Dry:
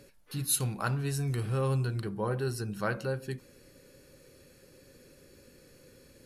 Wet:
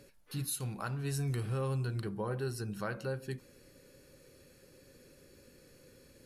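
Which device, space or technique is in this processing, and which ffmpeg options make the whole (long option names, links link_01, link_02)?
clipper into limiter: -af "asoftclip=type=hard:threshold=-15.5dB,alimiter=limit=-23.5dB:level=0:latency=1:release=264,volume=-2.5dB"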